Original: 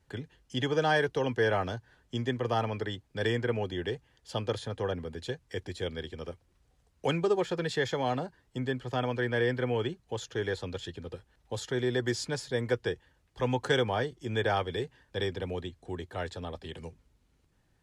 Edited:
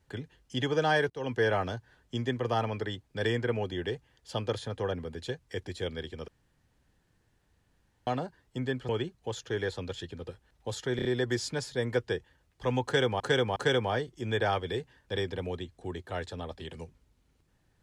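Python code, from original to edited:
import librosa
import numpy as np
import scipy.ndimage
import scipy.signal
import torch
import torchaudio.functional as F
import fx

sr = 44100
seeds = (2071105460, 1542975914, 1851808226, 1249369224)

y = fx.edit(x, sr, fx.fade_in_from(start_s=1.1, length_s=0.25, floor_db=-23.5),
    fx.room_tone_fill(start_s=6.28, length_s=1.79),
    fx.cut(start_s=8.89, length_s=0.85),
    fx.stutter(start_s=11.81, slice_s=0.03, count=4),
    fx.repeat(start_s=13.6, length_s=0.36, count=3), tone=tone)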